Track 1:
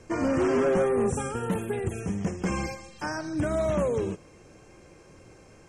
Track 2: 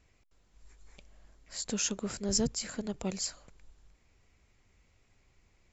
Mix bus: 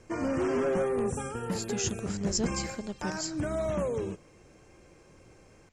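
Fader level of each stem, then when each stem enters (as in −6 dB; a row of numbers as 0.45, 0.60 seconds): −4.5, −1.0 decibels; 0.00, 0.00 seconds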